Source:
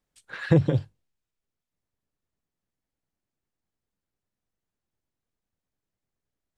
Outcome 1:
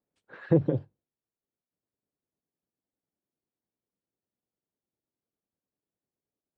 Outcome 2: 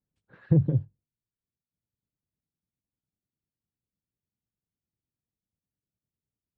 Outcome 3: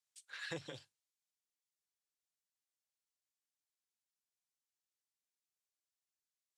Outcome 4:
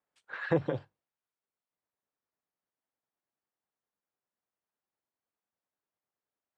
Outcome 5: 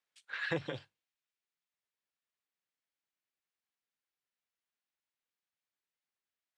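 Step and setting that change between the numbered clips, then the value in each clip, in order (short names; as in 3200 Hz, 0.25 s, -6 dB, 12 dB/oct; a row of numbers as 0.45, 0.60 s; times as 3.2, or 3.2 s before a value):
band-pass, frequency: 370, 130, 7100, 990, 2600 Hz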